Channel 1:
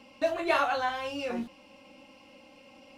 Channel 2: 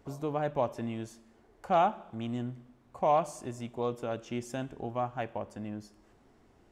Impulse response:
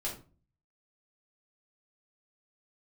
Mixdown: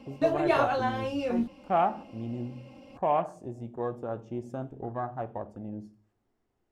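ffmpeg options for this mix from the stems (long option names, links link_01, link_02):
-filter_complex "[0:a]tiltshelf=frequency=640:gain=6.5,volume=2dB[link_01];[1:a]afwtdn=0.00794,volume=-1dB,asplit=2[link_02][link_03];[link_03]volume=-12dB[link_04];[2:a]atrim=start_sample=2205[link_05];[link_04][link_05]afir=irnorm=-1:irlink=0[link_06];[link_01][link_02][link_06]amix=inputs=3:normalize=0"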